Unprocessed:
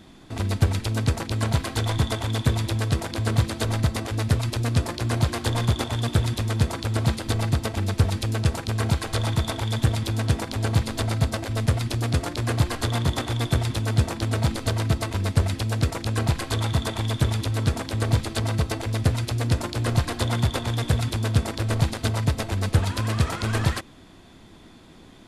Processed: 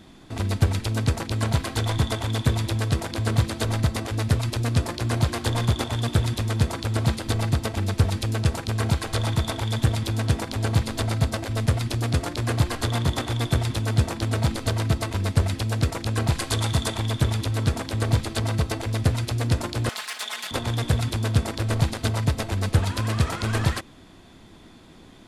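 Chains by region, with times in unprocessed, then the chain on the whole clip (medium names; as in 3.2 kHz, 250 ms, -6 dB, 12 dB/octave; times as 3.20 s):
16.32–16.97 s: low-pass 12 kHz 24 dB/octave + treble shelf 4.5 kHz +7.5 dB
19.89–20.51 s: comb filter that takes the minimum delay 4.7 ms + high-pass 1.4 kHz + level flattener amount 50%
whole clip: none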